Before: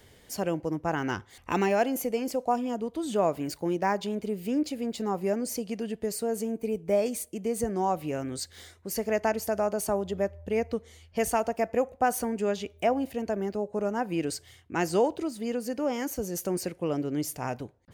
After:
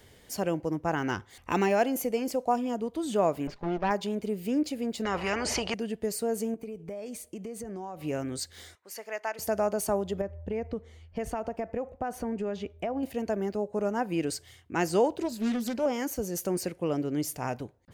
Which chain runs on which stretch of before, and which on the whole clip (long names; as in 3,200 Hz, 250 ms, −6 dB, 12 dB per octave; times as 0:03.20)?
0:03.47–0:03.91: lower of the sound and its delayed copy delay 5 ms + high-frequency loss of the air 190 metres
0:05.05–0:05.74: head-to-tape spacing loss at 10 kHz 29 dB + hollow resonant body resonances 440/2,900 Hz, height 10 dB, ringing for 40 ms + every bin compressed towards the loudest bin 4 to 1
0:06.54–0:08.03: downward compressor 16 to 1, threshold −34 dBFS + high-shelf EQ 8,200 Hz −6 dB
0:08.75–0:09.39: high-pass filter 1,100 Hz + spectral tilt −2.5 dB per octave
0:10.21–0:13.03: low-pass filter 1,800 Hz 6 dB per octave + downward compressor 5 to 1, threshold −28 dBFS + low-shelf EQ 71 Hz +9 dB
0:15.20–0:15.86: EQ curve with evenly spaced ripples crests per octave 1.4, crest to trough 13 dB + highs frequency-modulated by the lows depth 0.4 ms
whole clip: no processing